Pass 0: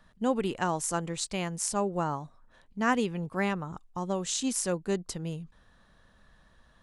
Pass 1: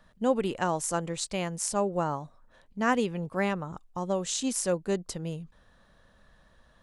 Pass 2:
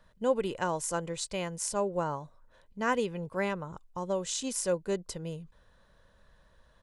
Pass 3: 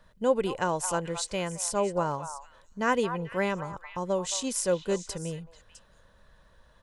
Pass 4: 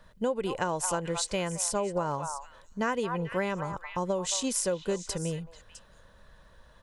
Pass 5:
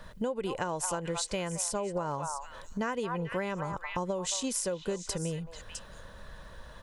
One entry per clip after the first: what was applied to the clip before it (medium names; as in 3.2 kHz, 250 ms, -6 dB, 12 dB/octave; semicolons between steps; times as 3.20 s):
peaking EQ 560 Hz +4.5 dB 0.52 oct
comb 2 ms, depth 33%; trim -3 dB
repeats whose band climbs or falls 219 ms, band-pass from 990 Hz, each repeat 1.4 oct, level -7 dB; trim +3 dB
compression 12:1, threshold -28 dBFS, peak gain reduction 11 dB; trim +3 dB
compression 2.5:1, threshold -44 dBFS, peak gain reduction 13 dB; trim +8.5 dB